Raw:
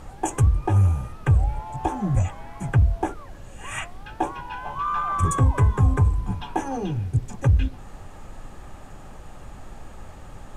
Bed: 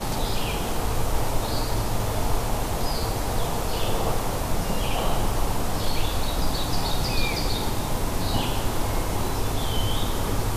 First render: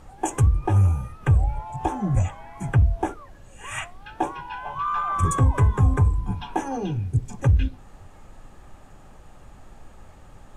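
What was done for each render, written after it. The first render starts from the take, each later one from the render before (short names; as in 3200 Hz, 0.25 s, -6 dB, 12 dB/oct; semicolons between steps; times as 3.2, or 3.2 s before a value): noise print and reduce 6 dB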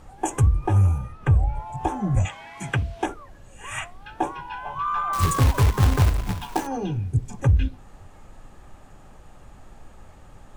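0.98–1.55 high shelf 8100 Hz -11 dB; 2.25–3.06 weighting filter D; 5.13–6.67 companded quantiser 4-bit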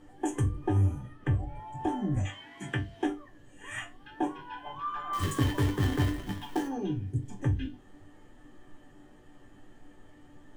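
resonator bank G2 major, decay 0.22 s; small resonant body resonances 300/1800/3100 Hz, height 14 dB, ringing for 25 ms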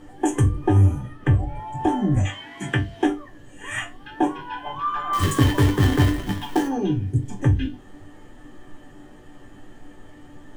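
gain +9.5 dB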